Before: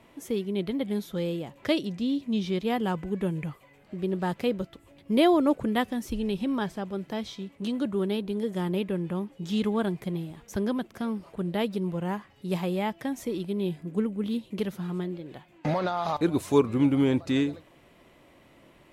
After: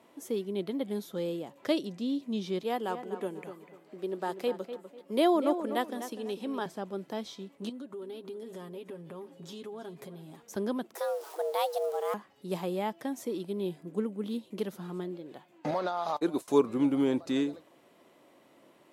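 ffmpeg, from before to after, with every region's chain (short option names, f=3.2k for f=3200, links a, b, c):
-filter_complex "[0:a]asettb=1/sr,asplit=3[a][b][c];[a]atrim=end=2.634[d];[b]atrim=start=2.63:end=6.66,asetpts=PTS-STARTPTS,afade=t=in:d=0.004:c=qsin,afade=t=out:st=4.026:d=0.004:c=qsin,highpass=290,asplit=2[e][f];[f]adelay=247,lowpass=f=2.4k:p=1,volume=-10dB,asplit=2[g][h];[h]adelay=247,lowpass=f=2.4k:p=1,volume=0.31,asplit=2[i][j];[j]adelay=247,lowpass=f=2.4k:p=1,volume=0.31[k];[e][g][i][k]amix=inputs=4:normalize=0,atrim=end_sample=177723[l];[c]atrim=start=6.656[m];[d][l]acrossfade=d=0.004:c1=hsin:c2=qsin[n];[n][m]acrossfade=d=0.004:c1=qsin:c2=hsin,asettb=1/sr,asplit=3[o][p][q];[o]atrim=end=7.694[r];[p]atrim=start=7.69:end=10.37,asetpts=PTS-STARTPTS,afade=t=in:d=0.004:c=qsin,afade=t=out:st=2.676:d=0.004:c=qsin,aecho=1:1:7.4:0.67,atrim=end_sample=118188,acompressor=threshold=-35dB:ratio=12:attack=3.2:release=140:knee=1:detection=peak,aecho=1:1:327:0.158,atrim=end_sample=118188[s];[q]atrim=start=10.366[t];[r][s]acrossfade=d=0.004:c1=hsin:c2=qsin[u];[u][t]acrossfade=d=0.004:c1=qsin:c2=hsin,asettb=1/sr,asplit=3[v][w][x];[v]atrim=end=10.954[y];[w]atrim=start=10.95:end=12.14,asetpts=PTS-STARTPTS,afade=t=in:d=0.004:c=qsin,afade=t=out:st=1.186:d=0.004:c=qsin,aeval=exprs='val(0)+0.5*0.00668*sgn(val(0))':c=same,aemphasis=mode=production:type=cd,afreqshift=290[z];[x]atrim=start=12.136[aa];[y][z]acrossfade=d=0.004:c1=hsin:c2=qsin[ab];[ab][aa]acrossfade=d=0.004:c1=qsin:c2=hsin,asettb=1/sr,asplit=3[ac][ad][ae];[ac]atrim=end=15.714[af];[ad]atrim=start=15.71:end=16.48,asetpts=PTS-STARTPTS,afade=t=in:d=0.004:c=qsin,afade=t=out:st=0.766:d=0.004:c=qsin,agate=range=-33dB:threshold=-29dB:ratio=3:release=100:detection=peak,lowshelf=f=120:g=-11[ag];[ae]atrim=start=16.476[ah];[af][ag]acrossfade=d=0.004:c1=hsin:c2=qsin[ai];[ai][ah]acrossfade=d=0.004:c1=qsin:c2=hsin,highpass=250,equalizer=f=2.3k:t=o:w=1.2:g=-6,volume=-1.5dB"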